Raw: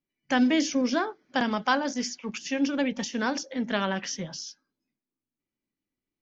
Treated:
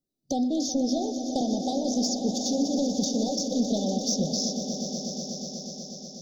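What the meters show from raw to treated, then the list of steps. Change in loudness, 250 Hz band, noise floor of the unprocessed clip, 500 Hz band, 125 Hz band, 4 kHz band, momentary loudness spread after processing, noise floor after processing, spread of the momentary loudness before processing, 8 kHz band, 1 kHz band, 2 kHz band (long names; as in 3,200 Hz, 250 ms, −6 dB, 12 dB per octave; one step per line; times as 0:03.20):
0.0 dB, +2.0 dB, below −85 dBFS, +2.0 dB, +5.5 dB, +3.0 dB, 8 LU, −44 dBFS, 11 LU, can't be measured, −4.5 dB, below −40 dB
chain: noise gate −44 dBFS, range −6 dB
downward compressor 6 to 1, threshold −30 dBFS, peak gain reduction 11.5 dB
soft clipping −26 dBFS, distortion −17 dB
Chebyshev band-stop filter 770–3,600 Hz, order 5
on a send: echo that builds up and dies away 122 ms, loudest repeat 5, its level −12 dB
on the sum: level +9 dB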